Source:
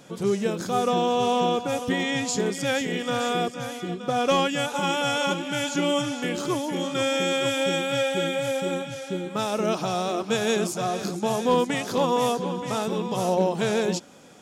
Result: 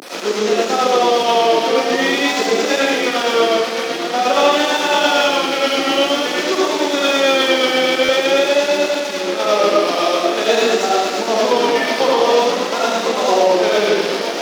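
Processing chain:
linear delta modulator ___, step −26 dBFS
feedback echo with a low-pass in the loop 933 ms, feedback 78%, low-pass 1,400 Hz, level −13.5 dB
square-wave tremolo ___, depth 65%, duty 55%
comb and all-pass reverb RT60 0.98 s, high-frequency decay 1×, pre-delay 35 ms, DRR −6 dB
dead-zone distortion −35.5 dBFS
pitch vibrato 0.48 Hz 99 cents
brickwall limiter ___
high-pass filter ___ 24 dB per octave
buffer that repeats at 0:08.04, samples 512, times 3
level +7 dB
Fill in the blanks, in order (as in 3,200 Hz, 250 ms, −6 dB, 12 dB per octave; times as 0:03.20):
32 kbit/s, 8.5 Hz, −10 dBFS, 280 Hz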